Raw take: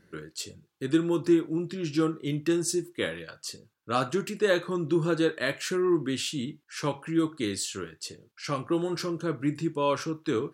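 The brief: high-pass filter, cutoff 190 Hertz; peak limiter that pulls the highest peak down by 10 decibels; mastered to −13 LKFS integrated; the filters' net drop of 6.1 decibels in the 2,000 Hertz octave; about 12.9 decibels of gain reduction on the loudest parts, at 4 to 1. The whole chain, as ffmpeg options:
ffmpeg -i in.wav -af "highpass=190,equalizer=frequency=2000:width_type=o:gain=-8,acompressor=threshold=-35dB:ratio=4,volume=29.5dB,alimiter=limit=-3.5dB:level=0:latency=1" out.wav

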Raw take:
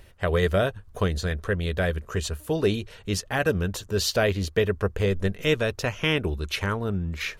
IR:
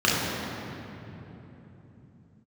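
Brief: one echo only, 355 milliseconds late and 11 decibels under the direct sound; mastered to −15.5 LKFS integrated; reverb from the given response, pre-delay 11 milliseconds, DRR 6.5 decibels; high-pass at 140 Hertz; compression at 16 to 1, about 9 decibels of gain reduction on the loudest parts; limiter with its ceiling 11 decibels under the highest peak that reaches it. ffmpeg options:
-filter_complex "[0:a]highpass=140,acompressor=threshold=-26dB:ratio=16,alimiter=limit=-22dB:level=0:latency=1,aecho=1:1:355:0.282,asplit=2[link_01][link_02];[1:a]atrim=start_sample=2205,adelay=11[link_03];[link_02][link_03]afir=irnorm=-1:irlink=0,volume=-25.5dB[link_04];[link_01][link_04]amix=inputs=2:normalize=0,volume=17dB"

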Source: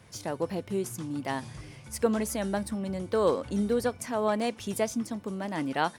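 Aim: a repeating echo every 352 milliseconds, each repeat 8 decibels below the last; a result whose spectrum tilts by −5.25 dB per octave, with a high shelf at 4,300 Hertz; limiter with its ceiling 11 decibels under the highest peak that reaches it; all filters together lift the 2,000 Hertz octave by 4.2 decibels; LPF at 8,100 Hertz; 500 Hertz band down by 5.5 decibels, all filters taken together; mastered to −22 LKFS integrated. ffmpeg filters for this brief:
ffmpeg -i in.wav -af "lowpass=8100,equalizer=frequency=500:width_type=o:gain=-7,equalizer=frequency=2000:width_type=o:gain=6.5,highshelf=frequency=4300:gain=-3.5,alimiter=limit=-23.5dB:level=0:latency=1,aecho=1:1:352|704|1056|1408|1760:0.398|0.159|0.0637|0.0255|0.0102,volume=12dB" out.wav

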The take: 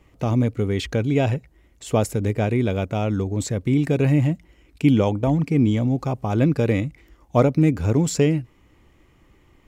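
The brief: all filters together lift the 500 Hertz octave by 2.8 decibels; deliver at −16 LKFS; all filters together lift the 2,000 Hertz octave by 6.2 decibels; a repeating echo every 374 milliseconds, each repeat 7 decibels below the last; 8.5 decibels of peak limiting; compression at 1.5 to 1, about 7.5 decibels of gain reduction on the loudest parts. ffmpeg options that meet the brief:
ffmpeg -i in.wav -af "equalizer=frequency=500:width_type=o:gain=3,equalizer=frequency=2000:width_type=o:gain=7.5,acompressor=threshold=-31dB:ratio=1.5,alimiter=limit=-17dB:level=0:latency=1,aecho=1:1:374|748|1122|1496|1870:0.447|0.201|0.0905|0.0407|0.0183,volume=11.5dB" out.wav

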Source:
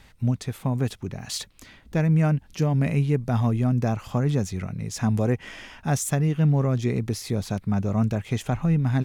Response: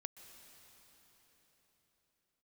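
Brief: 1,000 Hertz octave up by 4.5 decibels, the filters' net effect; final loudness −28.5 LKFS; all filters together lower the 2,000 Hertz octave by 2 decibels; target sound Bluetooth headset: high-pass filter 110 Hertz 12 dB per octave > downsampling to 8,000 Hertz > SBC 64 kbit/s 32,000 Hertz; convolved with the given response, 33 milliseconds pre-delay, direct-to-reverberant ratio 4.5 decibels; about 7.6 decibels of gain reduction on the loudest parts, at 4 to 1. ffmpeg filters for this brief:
-filter_complex "[0:a]equalizer=frequency=1000:width_type=o:gain=7.5,equalizer=frequency=2000:width_type=o:gain=-5.5,acompressor=threshold=-26dB:ratio=4,asplit=2[link_01][link_02];[1:a]atrim=start_sample=2205,adelay=33[link_03];[link_02][link_03]afir=irnorm=-1:irlink=0,volume=0dB[link_04];[link_01][link_04]amix=inputs=2:normalize=0,highpass=110,aresample=8000,aresample=44100,volume=2dB" -ar 32000 -c:a sbc -b:a 64k

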